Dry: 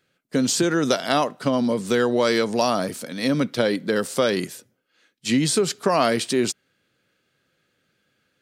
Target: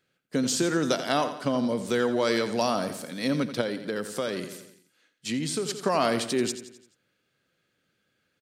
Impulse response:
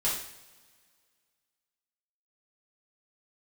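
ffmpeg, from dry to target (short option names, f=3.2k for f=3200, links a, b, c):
-filter_complex "[0:a]aecho=1:1:86|172|258|344|430:0.266|0.13|0.0639|0.0313|0.0153,asettb=1/sr,asplit=3[a][b][c];[a]atrim=end=3.614[d];[b]atrim=start=3.61:end=5.69,asetpts=PTS-STARTPTS,afade=t=in:d=0.004:c=qsin,afade=t=out:st=2.076:d=0.004:c=qsin,acompressor=threshold=-29dB:ratio=1.5[e];[c]atrim=start=5.686[f];[d][e]acrossfade=d=0.004:c1=hsin:c2=qsin[g];[g][f]acrossfade=d=0.004:c1=qsin:c2=hsin,volume=-5dB"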